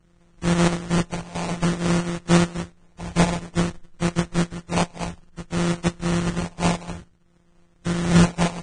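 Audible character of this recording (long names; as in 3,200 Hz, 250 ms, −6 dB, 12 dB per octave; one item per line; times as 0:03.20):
a buzz of ramps at a fixed pitch in blocks of 256 samples
phaser sweep stages 4, 0.56 Hz, lowest notch 390–1,500 Hz
aliases and images of a low sample rate 1,600 Hz, jitter 20%
Ogg Vorbis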